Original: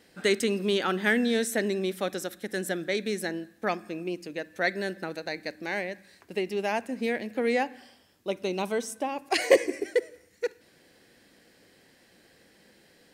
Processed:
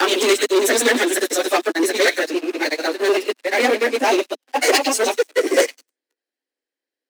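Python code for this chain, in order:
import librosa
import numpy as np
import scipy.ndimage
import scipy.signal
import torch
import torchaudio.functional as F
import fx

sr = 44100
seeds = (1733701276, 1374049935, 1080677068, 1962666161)

p1 = fx.block_reorder(x, sr, ms=136.0, group=7)
p2 = p1 + fx.echo_stepped(p1, sr, ms=187, hz=3300.0, octaves=0.7, feedback_pct=70, wet_db=-9, dry=0)
p3 = fx.stretch_vocoder_free(p2, sr, factor=0.54)
p4 = fx.dynamic_eq(p3, sr, hz=6400.0, q=1.5, threshold_db=-56.0, ratio=4.0, max_db=6)
p5 = fx.leveller(p4, sr, passes=5)
p6 = scipy.signal.sosfilt(scipy.signal.butter(16, 250.0, 'highpass', fs=sr, output='sos'), p5)
p7 = fx.upward_expand(p6, sr, threshold_db=-53.0, expansion=1.5)
y = p7 * librosa.db_to_amplitude(3.5)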